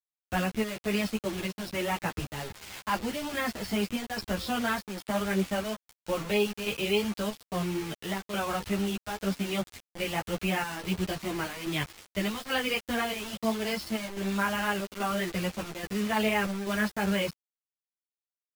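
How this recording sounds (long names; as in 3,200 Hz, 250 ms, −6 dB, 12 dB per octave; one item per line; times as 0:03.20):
chopped level 1.2 Hz, depth 60%, duty 75%
a quantiser's noise floor 6 bits, dither none
a shimmering, thickened sound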